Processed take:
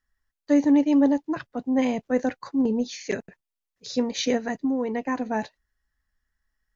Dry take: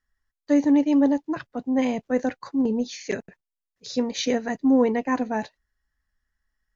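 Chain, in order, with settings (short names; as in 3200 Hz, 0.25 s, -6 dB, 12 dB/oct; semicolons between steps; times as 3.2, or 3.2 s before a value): 4.36–5.26 compressor 10:1, threshold -22 dBFS, peak gain reduction 8.5 dB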